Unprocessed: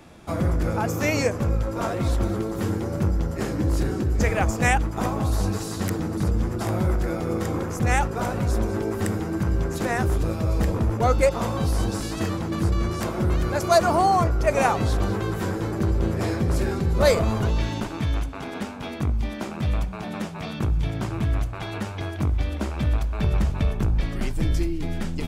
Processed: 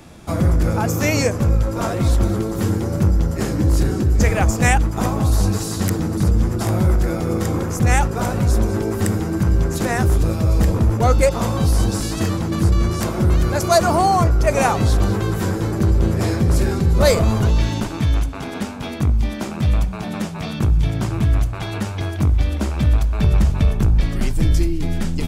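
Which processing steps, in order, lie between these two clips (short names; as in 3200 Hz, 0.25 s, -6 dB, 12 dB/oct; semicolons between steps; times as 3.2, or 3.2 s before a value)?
in parallel at -9.5 dB: soft clip -15.5 dBFS, distortion -17 dB; on the sum: tone controls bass +4 dB, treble +5 dB; gain +1 dB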